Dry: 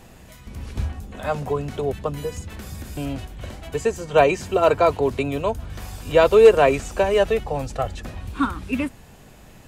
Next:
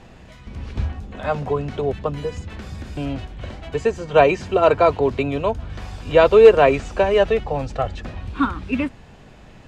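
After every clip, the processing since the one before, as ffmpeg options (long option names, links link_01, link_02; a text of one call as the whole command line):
ffmpeg -i in.wav -af "lowpass=4500,volume=2dB" out.wav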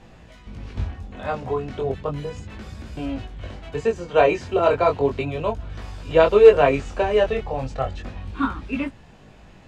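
ffmpeg -i in.wav -af "flanger=delay=18:depth=5.7:speed=0.34" out.wav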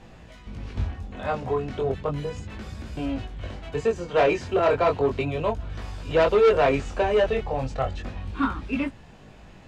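ffmpeg -i in.wav -af "asoftclip=type=tanh:threshold=-13.5dB" out.wav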